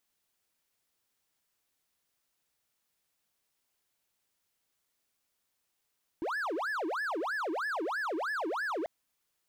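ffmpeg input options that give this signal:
-f lavfi -i "aevalsrc='0.0355*(1-4*abs(mod((1024.5*t-715.5/(2*PI*3.1)*sin(2*PI*3.1*t))+0.25,1)-0.5))':d=2.64:s=44100"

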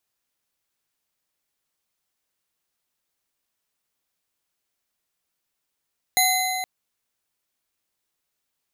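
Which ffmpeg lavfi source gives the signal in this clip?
-f lavfi -i "aevalsrc='0.0891*pow(10,-3*t/3.6)*sin(2*PI*747*t)+0.0841*pow(10,-3*t/2.656)*sin(2*PI*2059.5*t)+0.0794*pow(10,-3*t/2.17)*sin(2*PI*4036.8*t)+0.075*pow(10,-3*t/1.866)*sin(2*PI*6673*t)+0.0708*pow(10,-3*t/1.655)*sin(2*PI*9965*t)+0.0668*pow(10,-3*t/1.497)*sin(2*PI*13924.1*t)':d=0.47:s=44100"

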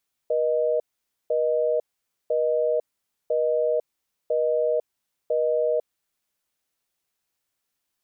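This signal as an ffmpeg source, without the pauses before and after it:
-f lavfi -i "aevalsrc='0.075*(sin(2*PI*480*t)+sin(2*PI*620*t))*clip(min(mod(t,1),0.5-mod(t,1))/0.005,0,1)':d=5.69:s=44100"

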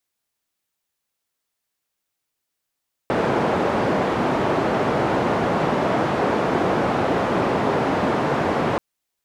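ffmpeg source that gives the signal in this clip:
-f lavfi -i "anoisesrc=c=white:d=5.68:r=44100:seed=1,highpass=f=130,lowpass=f=750,volume=-0.7dB"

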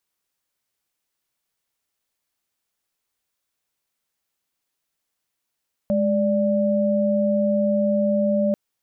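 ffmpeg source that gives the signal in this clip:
-f lavfi -i "aevalsrc='0.1*(sin(2*PI*207.65*t)+sin(2*PI*587.33*t))':d=2.64:s=44100"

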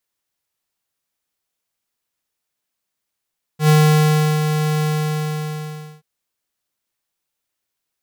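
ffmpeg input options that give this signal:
-f lavfi -i "aevalsrc='0.282*(2*lt(mod(153*t,1),0.5)-1)':d=2.43:s=44100,afade=t=in:d=0.097,afade=t=out:st=0.097:d=0.712:silence=0.422,afade=t=out:st=1.23:d=1.2"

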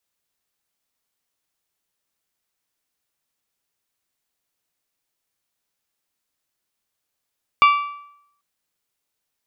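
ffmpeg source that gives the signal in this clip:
-f lavfi -i "aevalsrc='0.398*pow(10,-3*t/0.74)*sin(2*PI*1160*t)+0.188*pow(10,-3*t/0.601)*sin(2*PI*2320*t)+0.0891*pow(10,-3*t/0.569)*sin(2*PI*2784*t)+0.0422*pow(10,-3*t/0.532)*sin(2*PI*3480*t)+0.02*pow(10,-3*t/0.488)*sin(2*PI*4640*t)':d=0.79:s=44100"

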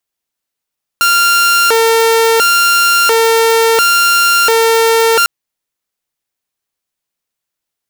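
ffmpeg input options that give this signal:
-f lavfi -i "aevalsrc='0.562*(2*mod((922*t+468/0.72*(0.5-abs(mod(0.72*t,1)-0.5))),1)-1)':d=4.25:s=44100"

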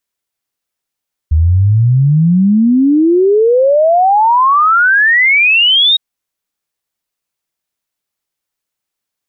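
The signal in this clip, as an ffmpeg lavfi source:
-f lavfi -i "aevalsrc='0.501*clip(min(t,4.66-t)/0.01,0,1)*sin(2*PI*75*4.66/log(3800/75)*(exp(log(3800/75)*t/4.66)-1))':d=4.66:s=44100"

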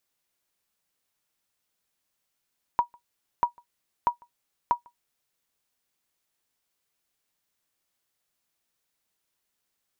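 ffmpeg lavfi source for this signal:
-f lavfi -i "aevalsrc='0.237*(sin(2*PI*959*mod(t,0.64))*exp(-6.91*mod(t,0.64)/0.11)+0.0316*sin(2*PI*959*max(mod(t,0.64)-0.15,0))*exp(-6.91*max(mod(t,0.64)-0.15,0)/0.11))':d=2.56:s=44100"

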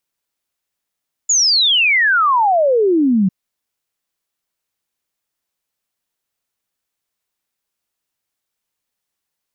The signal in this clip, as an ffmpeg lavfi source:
-f lavfi -i "aevalsrc='0.299*clip(min(t,2-t)/0.01,0,1)*sin(2*PI*7100*2/log(180/7100)*(exp(log(180/7100)*t/2)-1))':d=2:s=44100"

